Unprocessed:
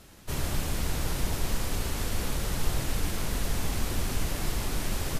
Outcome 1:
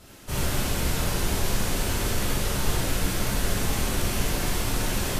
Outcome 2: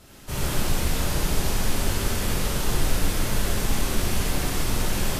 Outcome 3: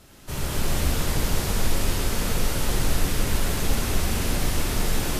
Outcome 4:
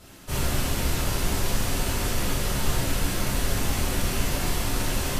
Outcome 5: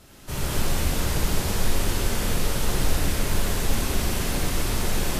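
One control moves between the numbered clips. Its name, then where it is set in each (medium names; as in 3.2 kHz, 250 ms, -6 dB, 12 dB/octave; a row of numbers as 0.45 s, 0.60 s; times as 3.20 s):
gated-style reverb, gate: 120 ms, 190 ms, 480 ms, 80 ms, 300 ms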